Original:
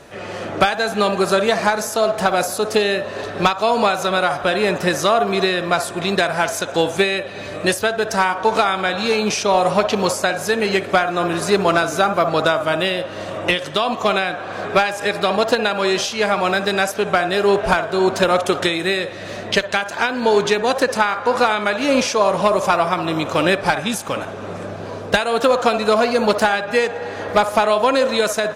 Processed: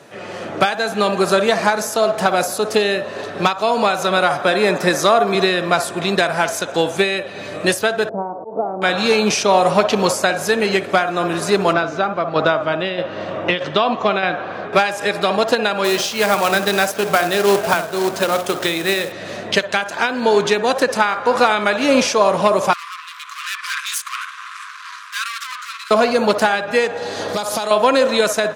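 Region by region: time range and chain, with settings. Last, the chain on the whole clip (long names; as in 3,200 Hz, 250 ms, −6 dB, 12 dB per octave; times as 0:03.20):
0:04.41–0:05.35: high-pass filter 150 Hz + notch filter 2,900 Hz, Q 9.2
0:08.09–0:08.82: inverse Chebyshev low-pass filter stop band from 3,100 Hz, stop band 70 dB + low-shelf EQ 130 Hz −11.5 dB + volume swells 195 ms
0:11.73–0:14.73: shaped tremolo saw down 1.6 Hz, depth 50% + high-frequency loss of the air 170 metres
0:15.84–0:19.12: mains-hum notches 60/120/180/240/300/360/420 Hz + log-companded quantiser 4 bits
0:22.73–0:25.91: tube saturation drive 25 dB, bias 0.75 + transient designer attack −12 dB, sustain −7 dB + linear-phase brick-wall high-pass 990 Hz
0:26.97–0:27.71: high shelf with overshoot 3,100 Hz +8.5 dB, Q 1.5 + downward compressor 8 to 1, threshold −20 dBFS
whole clip: high-pass filter 110 Hz 24 dB per octave; automatic gain control; level −1 dB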